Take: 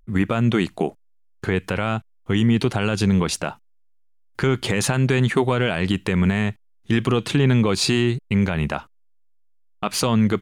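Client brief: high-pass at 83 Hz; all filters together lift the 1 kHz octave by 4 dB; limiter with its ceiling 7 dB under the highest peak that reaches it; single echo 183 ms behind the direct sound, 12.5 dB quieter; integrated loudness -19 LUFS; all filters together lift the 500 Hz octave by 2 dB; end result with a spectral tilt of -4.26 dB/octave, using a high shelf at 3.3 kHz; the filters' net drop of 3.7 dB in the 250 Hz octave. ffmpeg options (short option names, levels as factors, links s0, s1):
-af "highpass=83,equalizer=f=250:t=o:g=-6,equalizer=f=500:t=o:g=4,equalizer=f=1000:t=o:g=3.5,highshelf=f=3300:g=8,alimiter=limit=0.282:level=0:latency=1,aecho=1:1:183:0.237,volume=1.68"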